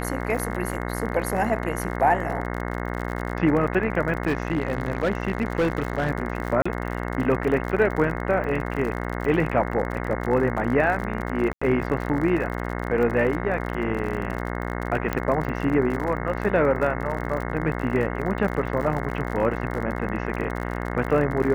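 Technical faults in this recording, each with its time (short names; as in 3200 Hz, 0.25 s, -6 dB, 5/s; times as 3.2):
buzz 60 Hz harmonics 36 -29 dBFS
crackle 46/s -30 dBFS
4.27–6.11 clipped -17 dBFS
6.62–6.66 gap 35 ms
11.53–11.62 gap 85 ms
15.13 pop -11 dBFS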